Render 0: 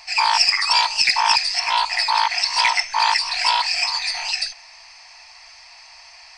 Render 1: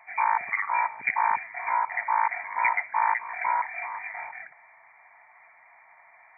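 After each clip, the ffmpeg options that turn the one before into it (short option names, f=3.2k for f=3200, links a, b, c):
-af "afftfilt=real='re*between(b*sr/4096,110,2400)':imag='im*between(b*sr/4096,110,2400)':win_size=4096:overlap=0.75,volume=-4.5dB"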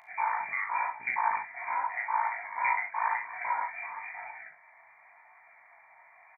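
-af "acompressor=mode=upward:threshold=-47dB:ratio=2.5,aecho=1:1:39|68:0.531|0.316,flanger=delay=17:depth=5.7:speed=0.92,volume=-3dB"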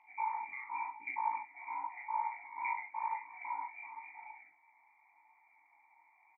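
-filter_complex "[0:a]asplit=3[a][b][c];[a]bandpass=f=300:t=q:w=8,volume=0dB[d];[b]bandpass=f=870:t=q:w=8,volume=-6dB[e];[c]bandpass=f=2.24k:t=q:w=8,volume=-9dB[f];[d][e][f]amix=inputs=3:normalize=0,volume=2dB"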